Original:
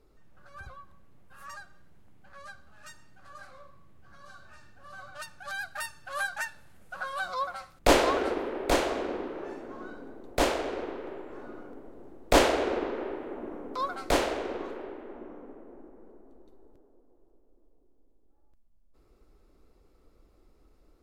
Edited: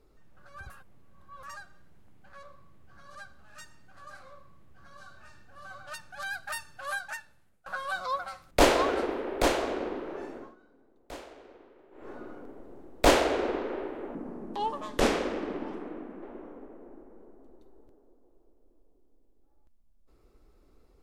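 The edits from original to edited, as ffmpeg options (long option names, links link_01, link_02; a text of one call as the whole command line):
ffmpeg -i in.wav -filter_complex "[0:a]asplit=10[link_01][link_02][link_03][link_04][link_05][link_06][link_07][link_08][link_09][link_10];[link_01]atrim=end=0.702[link_11];[link_02]atrim=start=0.698:end=1.432,asetpts=PTS-STARTPTS,areverse[link_12];[link_03]atrim=start=1.428:end=2.432[link_13];[link_04]atrim=start=3.578:end=4.302[link_14];[link_05]atrim=start=2.428:end=6.94,asetpts=PTS-STARTPTS,afade=type=out:start_time=3.552:duration=0.96:silence=0.0630957[link_15];[link_06]atrim=start=6.94:end=9.83,asetpts=PTS-STARTPTS,afade=type=in:duration=0.004:curve=hsin:silence=0.0630957,afade=type=out:start_time=2.71:duration=0.18:silence=0.125893[link_16];[link_07]atrim=start=9.83:end=11.19,asetpts=PTS-STARTPTS,volume=-18dB[link_17];[link_08]atrim=start=11.19:end=13.434,asetpts=PTS-STARTPTS,afade=type=in:duration=0.18:silence=0.125893[link_18];[link_09]atrim=start=13.43:end=15.09,asetpts=PTS-STARTPTS,asetrate=35280,aresample=44100[link_19];[link_10]atrim=start=15.086[link_20];[link_11][link_12]acrossfade=duration=0.004:curve1=hsin:curve2=hsin[link_21];[link_21][link_13]acrossfade=duration=0.004:curve1=hsin:curve2=hsin[link_22];[link_22][link_14]acrossfade=duration=0.004:curve1=hsin:curve2=hsin[link_23];[link_15][link_16][link_17][link_18]concat=n=4:v=0:a=1[link_24];[link_23][link_24]acrossfade=duration=0.004:curve1=hsin:curve2=hsin[link_25];[link_25][link_19]acrossfade=duration=0.004:curve1=hsin:curve2=hsin[link_26];[link_26][link_20]acrossfade=duration=0.004:curve1=hsin:curve2=hsin" out.wav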